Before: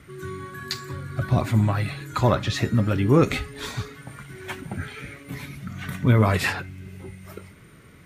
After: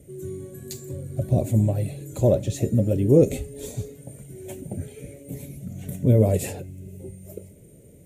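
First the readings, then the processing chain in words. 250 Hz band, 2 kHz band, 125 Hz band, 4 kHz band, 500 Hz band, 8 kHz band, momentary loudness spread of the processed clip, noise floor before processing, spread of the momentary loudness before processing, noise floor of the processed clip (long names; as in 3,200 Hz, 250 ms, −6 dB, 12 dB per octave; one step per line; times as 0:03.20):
0.0 dB, −18.0 dB, 0.0 dB, −13.0 dB, +3.5 dB, +2.5 dB, 22 LU, −49 dBFS, 21 LU, −49 dBFS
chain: drawn EQ curve 300 Hz 0 dB, 570 Hz +6 dB, 1,200 Hz −29 dB, 2,600 Hz −13 dB, 5,000 Hz −13 dB, 7,100 Hz +4 dB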